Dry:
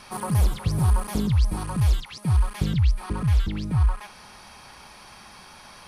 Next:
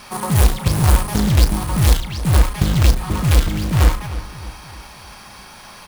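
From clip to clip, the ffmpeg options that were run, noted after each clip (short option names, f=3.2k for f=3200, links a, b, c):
-filter_complex "[0:a]acrusher=bits=2:mode=log:mix=0:aa=0.000001,asplit=2[a][b];[b]adelay=35,volume=-10.5dB[c];[a][c]amix=inputs=2:normalize=0,asplit=2[d][e];[e]adelay=307,lowpass=f=3.3k:p=1,volume=-13.5dB,asplit=2[f][g];[g]adelay=307,lowpass=f=3.3k:p=1,volume=0.48,asplit=2[h][i];[i]adelay=307,lowpass=f=3.3k:p=1,volume=0.48,asplit=2[j][k];[k]adelay=307,lowpass=f=3.3k:p=1,volume=0.48,asplit=2[l][m];[m]adelay=307,lowpass=f=3.3k:p=1,volume=0.48[n];[d][f][h][j][l][n]amix=inputs=6:normalize=0,volume=5.5dB"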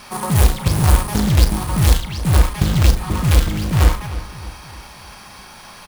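-filter_complex "[0:a]asplit=2[a][b];[b]adelay=47,volume=-13dB[c];[a][c]amix=inputs=2:normalize=0"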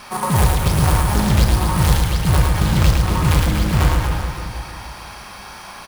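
-filter_complex "[0:a]equalizer=f=1.1k:t=o:w=2.4:g=4,alimiter=limit=-5dB:level=0:latency=1:release=190,asplit=2[a][b];[b]aecho=0:1:110|236.5|382|549.3|741.7:0.631|0.398|0.251|0.158|0.1[c];[a][c]amix=inputs=2:normalize=0,volume=-1dB"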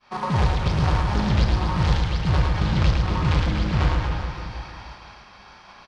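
-af "agate=range=-33dB:threshold=-30dB:ratio=3:detection=peak,lowpass=f=5.2k:w=0.5412,lowpass=f=5.2k:w=1.3066,volume=-5dB"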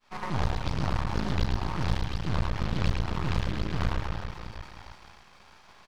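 -af "aeval=exprs='max(val(0),0)':c=same,volume=-4dB"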